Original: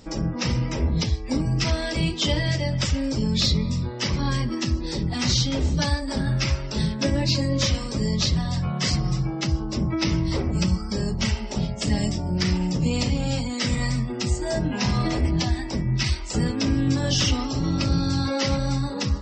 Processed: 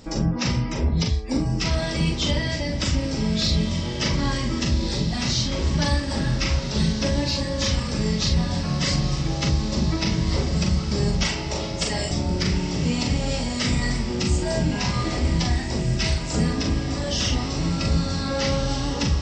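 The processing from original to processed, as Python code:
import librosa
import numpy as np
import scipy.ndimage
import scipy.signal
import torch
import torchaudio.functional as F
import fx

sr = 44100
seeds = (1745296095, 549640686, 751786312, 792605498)

y = fx.highpass(x, sr, hz=410.0, slope=24, at=(11.23, 12.11))
y = fx.rider(y, sr, range_db=4, speed_s=0.5)
y = fx.doubler(y, sr, ms=42.0, db=-4.5)
y = fx.echo_diffused(y, sr, ms=1600, feedback_pct=46, wet_db=-7.0)
y = y * librosa.db_to_amplitude(-1.0)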